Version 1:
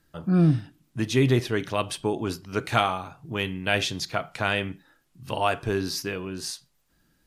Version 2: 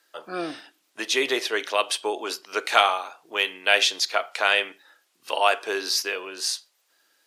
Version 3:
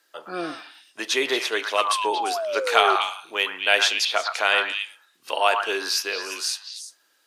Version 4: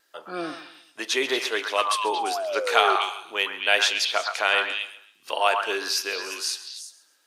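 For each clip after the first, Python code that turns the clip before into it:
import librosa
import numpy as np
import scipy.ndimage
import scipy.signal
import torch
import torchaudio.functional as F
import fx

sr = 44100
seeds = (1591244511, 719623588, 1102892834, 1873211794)

y1 = scipy.signal.sosfilt(scipy.signal.butter(4, 430.0, 'highpass', fs=sr, output='sos'), x)
y1 = fx.peak_eq(y1, sr, hz=4100.0, db=5.0, octaves=2.4)
y1 = F.gain(torch.from_numpy(y1), 3.0).numpy()
y2 = fx.echo_stepped(y1, sr, ms=115, hz=1200.0, octaves=1.4, feedback_pct=70, wet_db=-2.0)
y2 = fx.spec_paint(y2, sr, seeds[0], shape='fall', start_s=1.77, length_s=1.19, low_hz=370.0, high_hz=1300.0, level_db=-27.0)
y3 = fx.wow_flutter(y2, sr, seeds[1], rate_hz=2.1, depth_cents=21.0)
y3 = fx.echo_feedback(y3, sr, ms=135, feedback_pct=34, wet_db=-16.5)
y3 = F.gain(torch.from_numpy(y3), -1.5).numpy()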